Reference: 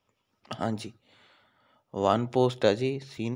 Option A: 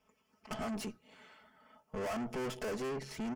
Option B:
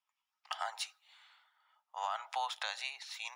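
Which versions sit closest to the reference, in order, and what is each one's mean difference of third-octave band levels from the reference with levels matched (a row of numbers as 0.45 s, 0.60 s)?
A, B; 9.5 dB, 16.5 dB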